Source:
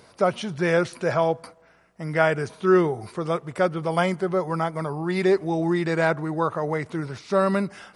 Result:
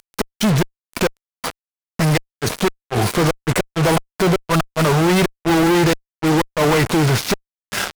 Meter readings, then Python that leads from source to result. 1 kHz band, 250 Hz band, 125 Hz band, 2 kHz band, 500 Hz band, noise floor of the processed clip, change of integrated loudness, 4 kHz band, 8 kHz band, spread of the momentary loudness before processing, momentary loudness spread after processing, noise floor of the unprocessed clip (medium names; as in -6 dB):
+4.5 dB, +7.0 dB, +10.0 dB, +5.5 dB, +2.0 dB, under -85 dBFS, +5.5 dB, +14.0 dB, no reading, 7 LU, 10 LU, -56 dBFS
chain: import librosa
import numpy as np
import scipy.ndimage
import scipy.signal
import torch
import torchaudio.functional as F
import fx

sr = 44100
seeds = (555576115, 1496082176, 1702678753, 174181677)

y = fx.gate_flip(x, sr, shuts_db=-13.0, range_db=-38)
y = fx.fuzz(y, sr, gain_db=48.0, gate_db=-42.0)